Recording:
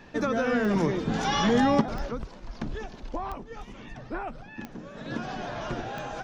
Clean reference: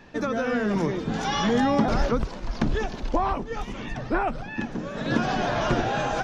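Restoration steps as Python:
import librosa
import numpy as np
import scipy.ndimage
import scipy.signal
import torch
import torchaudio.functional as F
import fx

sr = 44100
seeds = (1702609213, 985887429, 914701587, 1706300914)

y = fx.fix_declick_ar(x, sr, threshold=10.0)
y = fx.gain(y, sr, db=fx.steps((0.0, 0.0), (1.81, 9.5)))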